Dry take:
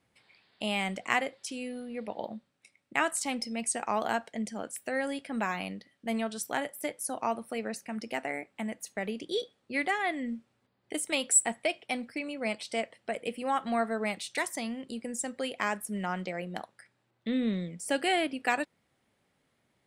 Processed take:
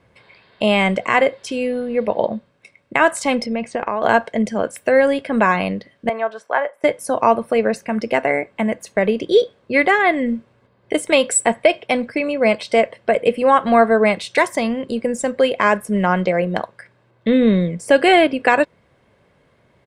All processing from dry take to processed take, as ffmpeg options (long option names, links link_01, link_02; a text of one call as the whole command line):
ffmpeg -i in.wav -filter_complex "[0:a]asettb=1/sr,asplit=3[link_01][link_02][link_03];[link_01]atrim=end=3.464[link_04];[link_02]atrim=start=3.46:end=4.03,asetpts=PTS-STARTPTS,afade=type=in:duration=0.004:curve=qsin,afade=type=out:start_time=0.566:duration=0.004:curve=qsin,lowpass=3200,acompressor=threshold=-33dB:ratio=12:attack=3.2:release=140:knee=1:detection=peak[link_05];[link_03]atrim=start=4.026[link_06];[link_04][link_05]acrossfade=duration=0.004:curve1=hsin:curve2=qsin[link_07];[link_07][link_06]acrossfade=duration=0.004:curve1=qsin:curve2=hsin,asettb=1/sr,asplit=3[link_08][link_09][link_10];[link_08]atrim=end=6.094[link_11];[link_09]atrim=start=6.09:end=6.84,asetpts=PTS-STARTPTS,afade=type=in:duration=0.004:curve=qsin,afade=type=out:start_time=0.746:duration=0.004:curve=qsin,highpass=120,lowpass=7800,acrossover=split=540 2000:gain=0.0708 1 0.126[link_12][link_13][link_14];[link_12][link_13][link_14]amix=inputs=3:normalize=0[link_15];[link_10]atrim=start=6.836[link_16];[link_11][link_15]acrossfade=duration=0.004:curve1=hsin:curve2=qsin[link_17];[link_17][link_16]acrossfade=duration=0.004:curve1=qsin:curve2=hsin,lowpass=frequency=1500:poles=1,aecho=1:1:1.9:0.39,alimiter=level_in=19dB:limit=-1dB:release=50:level=0:latency=1,volume=-1dB" out.wav